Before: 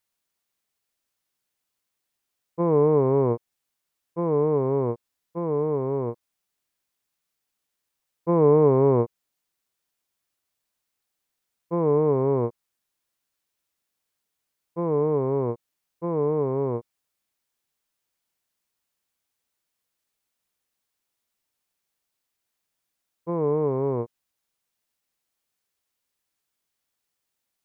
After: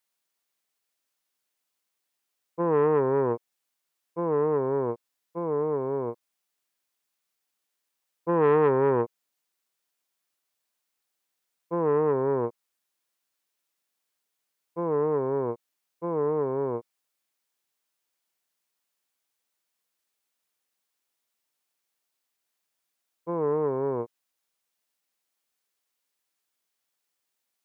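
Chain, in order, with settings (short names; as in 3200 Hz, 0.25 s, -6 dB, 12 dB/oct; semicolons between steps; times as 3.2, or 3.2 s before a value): HPF 290 Hz 6 dB/oct; core saturation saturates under 640 Hz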